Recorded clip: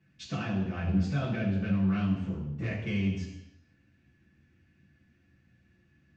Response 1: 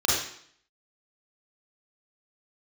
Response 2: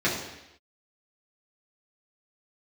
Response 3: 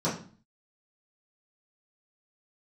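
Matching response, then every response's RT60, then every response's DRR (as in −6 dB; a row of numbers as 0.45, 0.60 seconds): 2; 0.60, 0.90, 0.40 seconds; −7.0, −8.0, −11.0 decibels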